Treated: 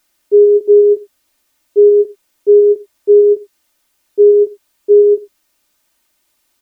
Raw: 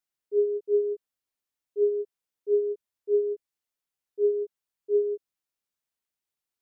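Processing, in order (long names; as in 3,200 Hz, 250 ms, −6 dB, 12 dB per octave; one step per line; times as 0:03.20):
comb filter 3.3 ms, depth 58%
on a send at −17 dB: convolution reverb, pre-delay 6 ms
on the sum: boost into a limiter +25 dB
level −1 dB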